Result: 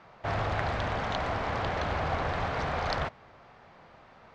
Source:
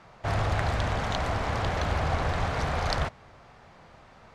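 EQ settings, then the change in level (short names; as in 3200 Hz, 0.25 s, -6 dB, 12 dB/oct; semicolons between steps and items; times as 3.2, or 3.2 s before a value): air absorption 120 m; low shelf 140 Hz -8.5 dB; 0.0 dB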